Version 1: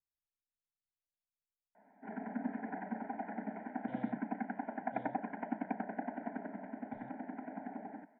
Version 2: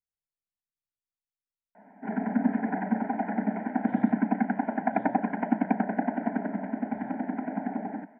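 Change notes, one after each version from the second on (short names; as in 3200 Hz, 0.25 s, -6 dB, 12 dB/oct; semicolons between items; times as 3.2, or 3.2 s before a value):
background +10.5 dB; master: add bell 190 Hz +5 dB 0.92 oct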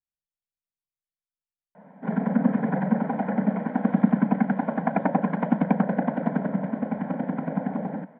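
background: remove fixed phaser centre 770 Hz, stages 8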